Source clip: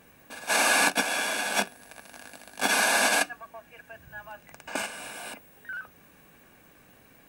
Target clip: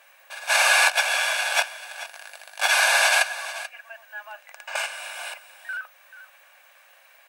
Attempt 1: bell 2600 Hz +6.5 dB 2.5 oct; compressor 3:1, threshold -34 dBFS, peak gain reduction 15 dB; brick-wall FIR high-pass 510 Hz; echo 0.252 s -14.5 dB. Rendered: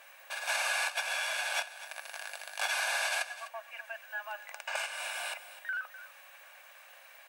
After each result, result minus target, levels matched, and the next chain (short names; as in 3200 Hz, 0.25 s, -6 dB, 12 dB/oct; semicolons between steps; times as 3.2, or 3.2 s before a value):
compressor: peak gain reduction +15 dB; echo 0.184 s early
brick-wall FIR high-pass 510 Hz; bell 2600 Hz +6.5 dB 2.5 oct; echo 0.252 s -14.5 dB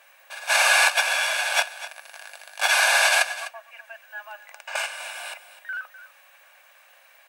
echo 0.184 s early
brick-wall FIR high-pass 510 Hz; bell 2600 Hz +6.5 dB 2.5 oct; echo 0.436 s -14.5 dB